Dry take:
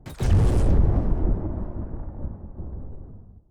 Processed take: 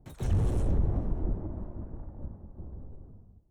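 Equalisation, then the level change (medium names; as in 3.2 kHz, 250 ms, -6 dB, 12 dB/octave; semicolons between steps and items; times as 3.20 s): peaking EQ 2 kHz -3.5 dB 1.8 oct; band-stop 4.8 kHz, Q 5.3; -8.0 dB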